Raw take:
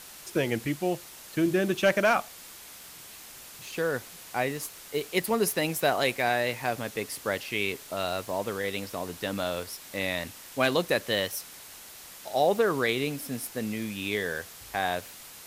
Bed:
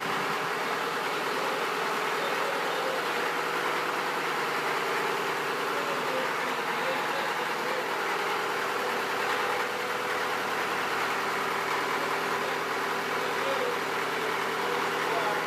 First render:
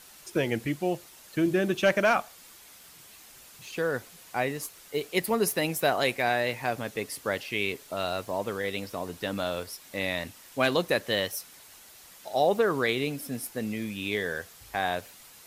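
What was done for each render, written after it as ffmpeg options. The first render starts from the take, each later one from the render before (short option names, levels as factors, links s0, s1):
-af "afftdn=nr=6:nf=-47"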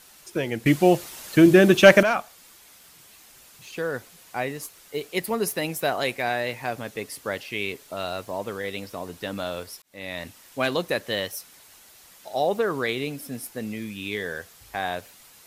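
-filter_complex "[0:a]asettb=1/sr,asplit=3[s0][s1][s2];[s0]atrim=end=13.794[s3];[s1]atrim=start=13.79:end=14.2,asetpts=PTS-STARTPTS,afade=t=in:d=0.004:c=qsin,afade=t=out:st=0.406:d=0.004:c=qsin,equalizer=f=640:w=3.1:g=-8.5[s4];[s2]atrim=start=14.196[s5];[s3][s4]acrossfade=d=0.004:c1=hsin:c2=qsin[s6];[s6][s5]acrossfade=d=0.004:c1=qsin:c2=hsin,asplit=4[s7][s8][s9][s10];[s7]atrim=end=0.662[s11];[s8]atrim=start=0.658:end=2.032,asetpts=PTS-STARTPTS,volume=3.55[s12];[s9]atrim=start=2.028:end=9.82,asetpts=PTS-STARTPTS,afade=t=out:st=7.788:d=0.004:c=hsin[s13];[s10]atrim=start=9.82,asetpts=PTS-STARTPTS,afade=t=in:d=0.44[s14];[s11][s12]acrossfade=d=0.004:c1=hsin:c2=hsin[s15];[s13][s14]concat=n=2:v=0:a=1[s16];[s15][s16]acrossfade=d=0.004:c1=hsin:c2=hsin"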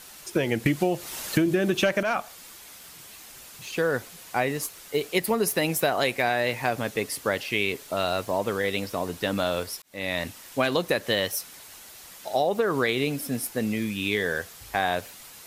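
-filter_complex "[0:a]asplit=2[s0][s1];[s1]alimiter=limit=0.335:level=0:latency=1:release=77,volume=0.841[s2];[s0][s2]amix=inputs=2:normalize=0,acompressor=threshold=0.112:ratio=16"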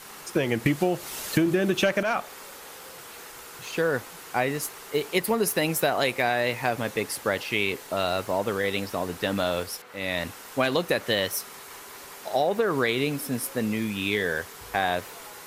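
-filter_complex "[1:a]volume=0.133[s0];[0:a][s0]amix=inputs=2:normalize=0"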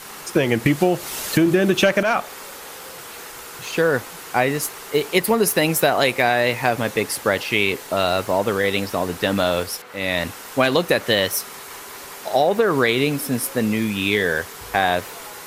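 -af "volume=2.11,alimiter=limit=0.708:level=0:latency=1"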